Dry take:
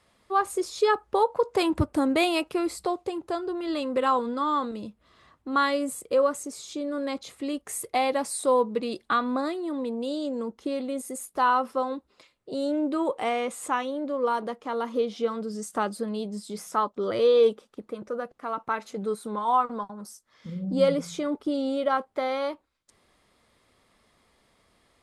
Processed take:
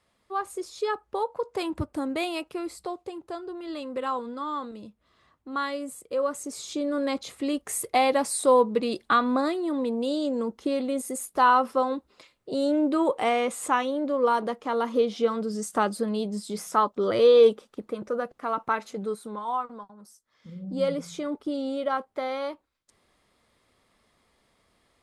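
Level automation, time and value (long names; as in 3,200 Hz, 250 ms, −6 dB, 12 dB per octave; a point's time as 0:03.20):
0:06.13 −6 dB
0:06.60 +3 dB
0:18.65 +3 dB
0:19.90 −10 dB
0:21.15 −2.5 dB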